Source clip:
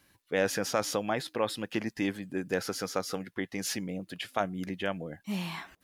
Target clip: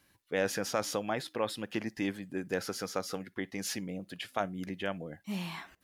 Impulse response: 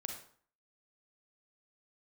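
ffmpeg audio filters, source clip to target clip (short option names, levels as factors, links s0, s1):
-filter_complex "[0:a]asplit=2[s0][s1];[1:a]atrim=start_sample=2205,atrim=end_sample=3087[s2];[s1][s2]afir=irnorm=-1:irlink=0,volume=0.133[s3];[s0][s3]amix=inputs=2:normalize=0,volume=0.668"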